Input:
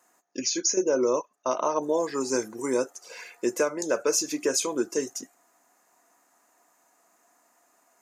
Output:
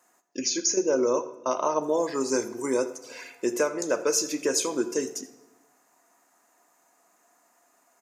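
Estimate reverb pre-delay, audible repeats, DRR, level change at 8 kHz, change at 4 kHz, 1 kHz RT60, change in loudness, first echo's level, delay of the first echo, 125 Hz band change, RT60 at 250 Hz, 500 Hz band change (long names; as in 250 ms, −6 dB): 5 ms, 1, 11.0 dB, 0.0 dB, +0.5 dB, 0.95 s, 0.0 dB, −19.0 dB, 84 ms, +0.5 dB, 1.3 s, +0.5 dB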